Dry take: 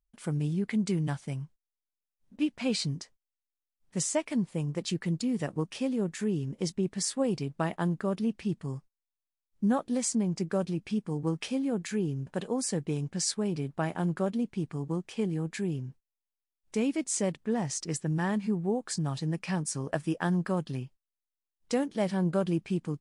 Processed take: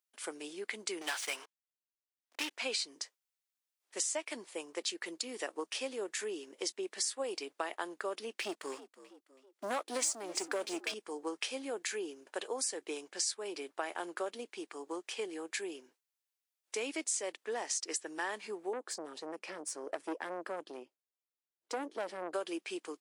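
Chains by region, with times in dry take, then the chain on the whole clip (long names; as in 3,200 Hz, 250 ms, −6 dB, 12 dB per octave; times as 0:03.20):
0:01.01–0:02.51: high-pass filter 1,500 Hz 6 dB per octave + high-shelf EQ 6,100 Hz −8.5 dB + leveller curve on the samples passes 5
0:08.34–0:10.94: notch filter 680 Hz, Q 9.4 + leveller curve on the samples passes 2 + echo with shifted repeats 326 ms, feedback 36%, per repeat +65 Hz, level −18 dB
0:18.73–0:22.34: tilt shelving filter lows +9 dB, about 730 Hz + tube saturation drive 24 dB, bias 0.45
whole clip: Butterworth high-pass 330 Hz 36 dB per octave; tilt shelving filter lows −5 dB, about 940 Hz; downward compressor 4 to 1, threshold −33 dBFS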